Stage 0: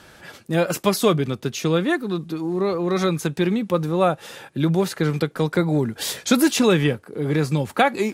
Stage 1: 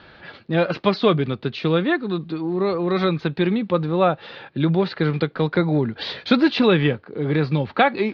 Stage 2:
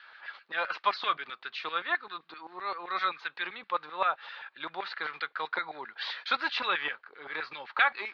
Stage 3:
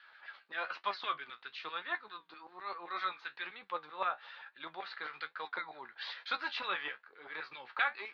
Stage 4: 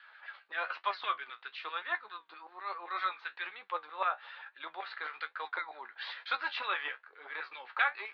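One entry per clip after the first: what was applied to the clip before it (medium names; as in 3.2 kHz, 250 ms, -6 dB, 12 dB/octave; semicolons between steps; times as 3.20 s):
elliptic low-pass 4.3 kHz, stop band 50 dB; trim +1.5 dB
LFO high-pass saw down 7.7 Hz 880–1800 Hz; trim -8 dB
flange 1.1 Hz, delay 9.9 ms, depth 7.2 ms, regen +50%; trim -3 dB
band-pass 480–3700 Hz; trim +3 dB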